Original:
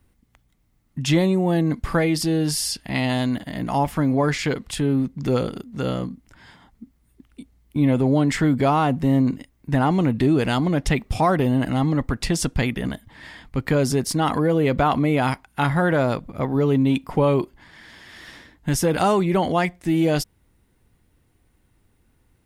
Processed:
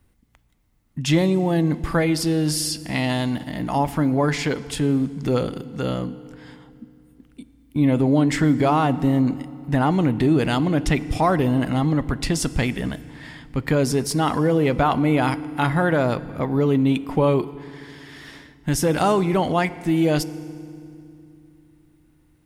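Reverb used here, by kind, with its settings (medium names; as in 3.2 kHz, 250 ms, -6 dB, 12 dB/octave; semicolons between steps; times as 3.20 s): FDN reverb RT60 2.5 s, low-frequency decay 1.6×, high-frequency decay 0.8×, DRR 15.5 dB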